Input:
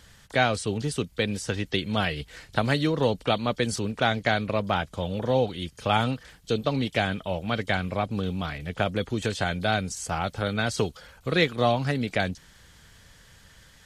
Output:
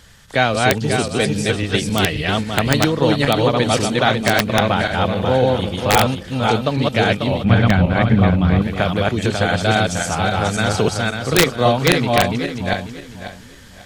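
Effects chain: regenerating reverse delay 0.271 s, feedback 51%, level -0.5 dB; wrapped overs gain 9 dB; 7.44–8.62 tone controls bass +10 dB, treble -10 dB; gain +6 dB

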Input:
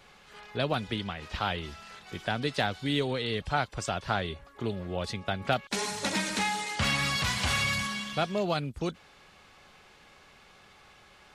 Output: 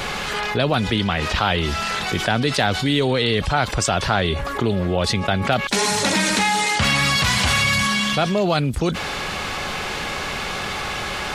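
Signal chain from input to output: fast leveller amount 70%; gain +6.5 dB

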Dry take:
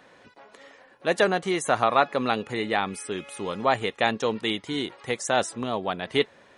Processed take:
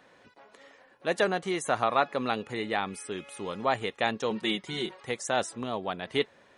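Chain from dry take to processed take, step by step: 4.3–5 comb 5.4 ms, depth 87%; gain -4.5 dB

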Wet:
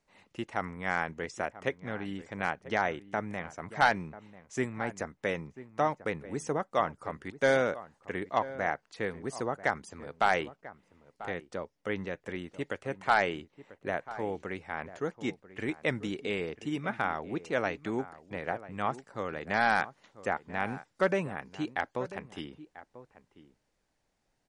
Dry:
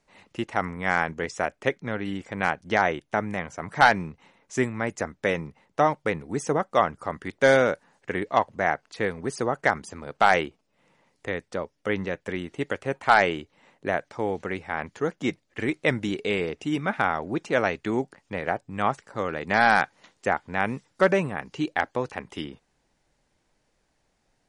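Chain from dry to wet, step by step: outdoor echo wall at 170 m, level -15 dB; gain -7 dB

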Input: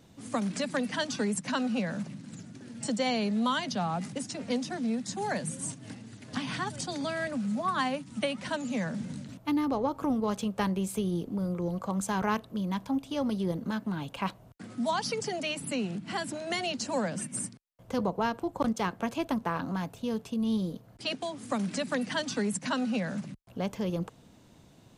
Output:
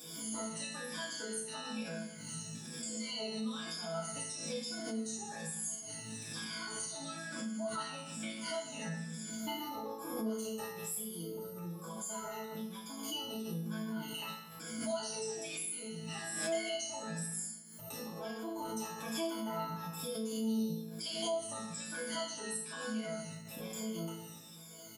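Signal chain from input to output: moving spectral ripple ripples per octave 1.8, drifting -1.1 Hz, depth 20 dB; HPF 56 Hz; pre-emphasis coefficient 0.8; comb 4.7 ms, depth 72%; compressor 6:1, threshold -49 dBFS, peak gain reduction 24 dB; high shelf 8400 Hz +6.5 dB; resonator bank A2 fifth, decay 0.46 s; FDN reverb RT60 0.93 s, low-frequency decay 0.95×, high-frequency decay 0.6×, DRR -5 dB; backwards sustainer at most 43 dB/s; gain +17.5 dB

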